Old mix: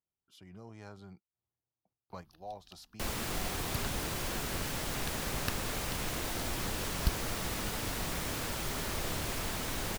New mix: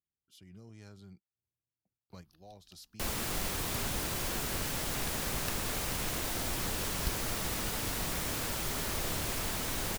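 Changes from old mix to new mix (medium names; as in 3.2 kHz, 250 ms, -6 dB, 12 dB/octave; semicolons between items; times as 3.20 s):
speech: add peaking EQ 880 Hz -13 dB 1.7 oct; second sound -5.5 dB; master: add treble shelf 6.1 kHz +4.5 dB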